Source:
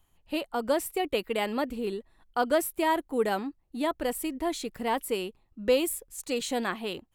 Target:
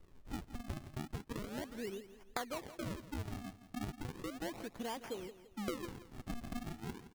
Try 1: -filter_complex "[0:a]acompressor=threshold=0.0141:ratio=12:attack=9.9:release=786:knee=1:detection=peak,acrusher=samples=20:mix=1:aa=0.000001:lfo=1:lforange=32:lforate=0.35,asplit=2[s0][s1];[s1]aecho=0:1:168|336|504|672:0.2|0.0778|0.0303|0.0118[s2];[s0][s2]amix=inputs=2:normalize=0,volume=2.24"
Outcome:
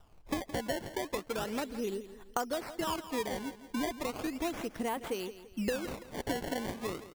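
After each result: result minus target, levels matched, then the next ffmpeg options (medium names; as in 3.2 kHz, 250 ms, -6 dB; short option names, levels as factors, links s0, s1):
compression: peak gain reduction -7.5 dB; decimation with a swept rate: distortion -10 dB
-filter_complex "[0:a]acompressor=threshold=0.00562:ratio=12:attack=9.9:release=786:knee=1:detection=peak,acrusher=samples=20:mix=1:aa=0.000001:lfo=1:lforange=32:lforate=0.35,asplit=2[s0][s1];[s1]aecho=0:1:168|336|504|672:0.2|0.0778|0.0303|0.0118[s2];[s0][s2]amix=inputs=2:normalize=0,volume=2.24"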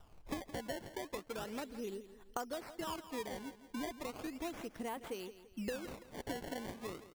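decimation with a swept rate: distortion -10 dB
-filter_complex "[0:a]acompressor=threshold=0.00562:ratio=12:attack=9.9:release=786:knee=1:detection=peak,acrusher=samples=52:mix=1:aa=0.000001:lfo=1:lforange=83.2:lforate=0.35,asplit=2[s0][s1];[s1]aecho=0:1:168|336|504|672:0.2|0.0778|0.0303|0.0118[s2];[s0][s2]amix=inputs=2:normalize=0,volume=2.24"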